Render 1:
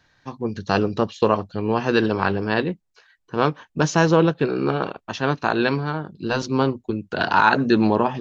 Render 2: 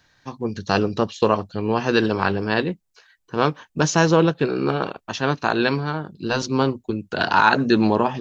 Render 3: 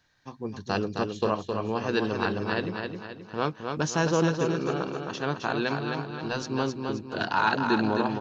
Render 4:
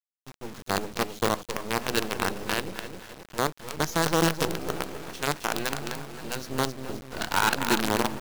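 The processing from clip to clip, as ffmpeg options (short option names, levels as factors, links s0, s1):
-af "highshelf=f=5300:g=8"
-af "aecho=1:1:264|528|792|1056|1320|1584:0.562|0.253|0.114|0.0512|0.0231|0.0104,volume=0.376"
-af "acrusher=bits=4:dc=4:mix=0:aa=0.000001"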